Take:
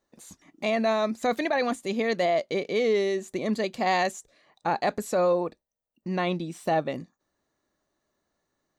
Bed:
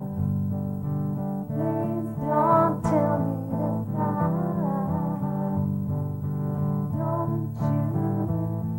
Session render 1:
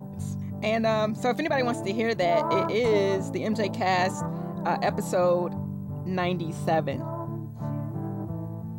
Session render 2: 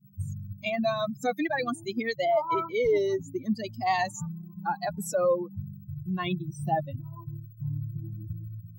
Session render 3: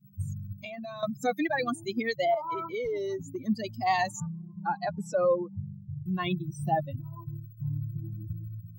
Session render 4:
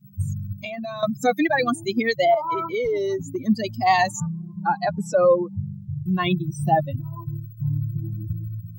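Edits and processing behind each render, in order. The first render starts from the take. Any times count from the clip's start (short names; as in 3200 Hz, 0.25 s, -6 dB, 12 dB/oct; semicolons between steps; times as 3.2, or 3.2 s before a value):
add bed -7 dB
per-bin expansion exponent 3; in parallel at +3 dB: compressor, threshold -37 dBFS, peak gain reduction 13.5 dB
0.57–1.03 compressor 16:1, threshold -36 dBFS; 2.34–3.45 compressor 4:1, threshold -30 dBFS; 4.2–6.06 air absorption 110 m
gain +8 dB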